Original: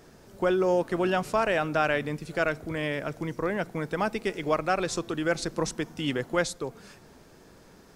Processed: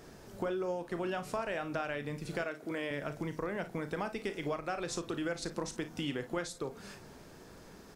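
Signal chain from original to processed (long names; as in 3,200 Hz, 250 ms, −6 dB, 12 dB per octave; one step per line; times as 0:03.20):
0:02.43–0:02.91: Chebyshev high-pass filter 270 Hz, order 2
downward compressor 5 to 1, threshold −34 dBFS, peak gain reduction 13 dB
ambience of single reflections 35 ms −11.5 dB, 55 ms −14 dB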